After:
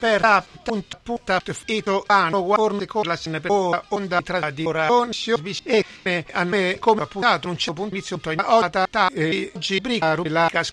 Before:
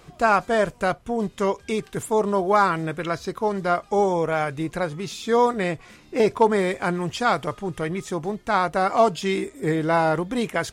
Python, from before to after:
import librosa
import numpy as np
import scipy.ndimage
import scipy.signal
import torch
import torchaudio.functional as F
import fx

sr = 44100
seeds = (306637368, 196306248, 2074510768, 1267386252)

y = fx.block_reorder(x, sr, ms=233.0, group=3)
y = scipy.signal.sosfilt(scipy.signal.butter(2, 5800.0, 'lowpass', fs=sr, output='sos'), y)
y = fx.peak_eq(y, sr, hz=4000.0, db=10.5, octaves=2.4)